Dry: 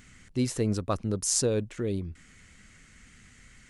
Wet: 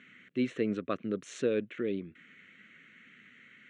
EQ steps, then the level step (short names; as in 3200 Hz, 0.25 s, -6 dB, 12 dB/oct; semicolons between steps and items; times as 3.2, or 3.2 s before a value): Bessel high-pass 280 Hz, order 4; LPF 4300 Hz 24 dB/oct; fixed phaser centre 2100 Hz, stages 4; +3.0 dB